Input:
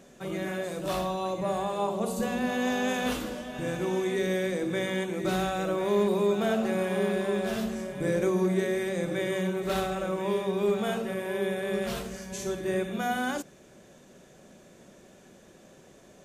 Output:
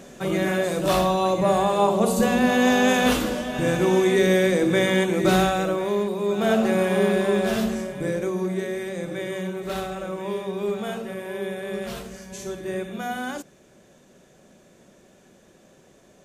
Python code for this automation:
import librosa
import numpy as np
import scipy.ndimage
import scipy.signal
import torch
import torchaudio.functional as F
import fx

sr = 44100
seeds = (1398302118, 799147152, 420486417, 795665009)

y = fx.gain(x, sr, db=fx.line((5.39, 9.5), (6.16, -2.0), (6.52, 7.0), (7.72, 7.0), (8.22, -0.5)))